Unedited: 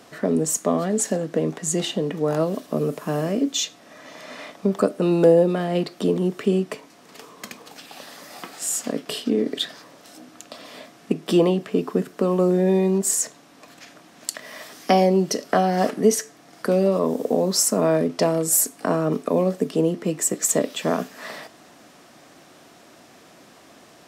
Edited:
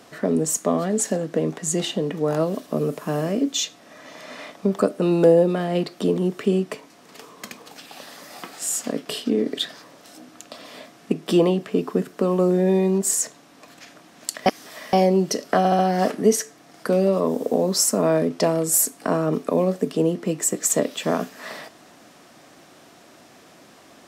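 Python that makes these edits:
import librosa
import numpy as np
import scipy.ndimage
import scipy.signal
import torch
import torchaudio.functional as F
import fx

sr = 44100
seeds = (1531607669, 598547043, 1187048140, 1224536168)

y = fx.edit(x, sr, fx.reverse_span(start_s=14.46, length_s=0.47),
    fx.stutter(start_s=15.58, slice_s=0.07, count=4), tone=tone)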